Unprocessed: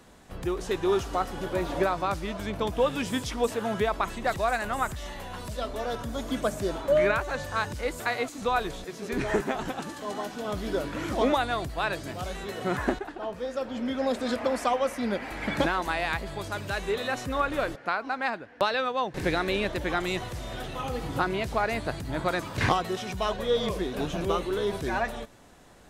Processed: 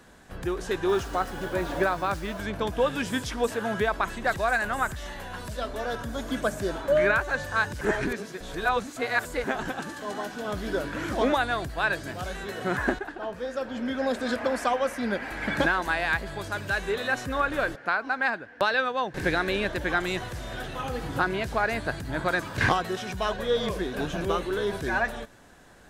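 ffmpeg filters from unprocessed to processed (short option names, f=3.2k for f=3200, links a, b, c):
-filter_complex "[0:a]asettb=1/sr,asplit=3[a][b][c];[a]atrim=end=0.894[d];[b]atrim=start=0.89:end=2.4,asetpts=PTS-STARTPTS,afade=t=in:d=0.004:c=qsin,afade=t=out:st=1.506:d=0.004:c=qsin,acrusher=bits=7:mix=0:aa=0.5[e];[c]atrim=start=2.396[f];[d][e]acrossfade=d=0.004:c1=hsin:c2=qsin[g];[g][f]acrossfade=d=0.004:c1=qsin:c2=hsin,asplit=3[h][i][j];[h]atrim=end=7.812[k];[i]atrim=start=7.808:end=9.442,asetpts=PTS-STARTPTS,areverse[l];[j]atrim=start=9.438[m];[k][l]acrossfade=d=0.004:c1=hsin:c2=hsin[n];[n][m]acrossfade=d=0.004:c1=hsin:c2=hsin,equalizer=f=1.6k:w=6.1:g=9"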